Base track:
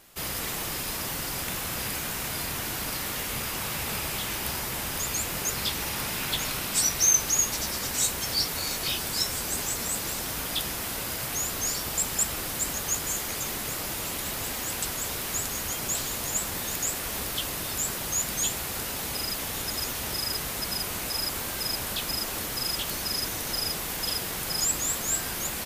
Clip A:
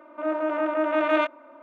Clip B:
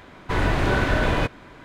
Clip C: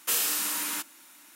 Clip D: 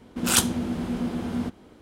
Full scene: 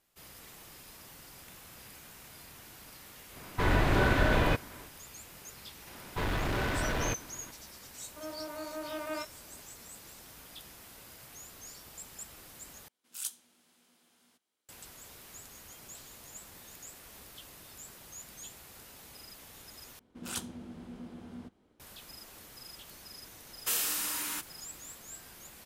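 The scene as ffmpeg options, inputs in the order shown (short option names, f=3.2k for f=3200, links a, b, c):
-filter_complex "[2:a]asplit=2[a][b];[4:a]asplit=2[c][d];[0:a]volume=-19.5dB[e];[b]asoftclip=type=hard:threshold=-23dB[f];[c]aderivative[g];[e]asplit=3[h][i][j];[h]atrim=end=12.884[k];[g]atrim=end=1.81,asetpts=PTS-STARTPTS,volume=-16.5dB[l];[i]atrim=start=14.686:end=19.994[m];[d]atrim=end=1.81,asetpts=PTS-STARTPTS,volume=-17.5dB[n];[j]atrim=start=21.796[o];[a]atrim=end=1.64,asetpts=PTS-STARTPTS,volume=-4.5dB,afade=t=in:d=0.1,afade=t=out:st=1.54:d=0.1,adelay=145089S[p];[f]atrim=end=1.64,asetpts=PTS-STARTPTS,volume=-6dB,afade=t=in:d=0.004:c=hsin,afade=t=out:st=1.636:d=0.004:c=hsin,adelay=5870[q];[1:a]atrim=end=1.62,asetpts=PTS-STARTPTS,volume=-16dB,afade=t=in:d=0.004:c=hsin,afade=t=out:st=1.616:d=0.004:c=hsin,adelay=7980[r];[3:a]atrim=end=1.35,asetpts=PTS-STARTPTS,volume=-4.5dB,afade=t=in:d=0.004:c=hsin,afade=t=out:st=1.346:d=0.004:c=hsin,adelay=23590[s];[k][l]acrossfade=d=0.004:c1=hsin:c2=hsin[t];[t][m]acrossfade=d=0.004:c1=hsin:c2=hsin[u];[u][n]acrossfade=d=0.004:c1=hsin:c2=hsin[v];[v][o]acrossfade=d=0.004:c1=hsin:c2=hsin[w];[w][p][q][r][s]amix=inputs=5:normalize=0"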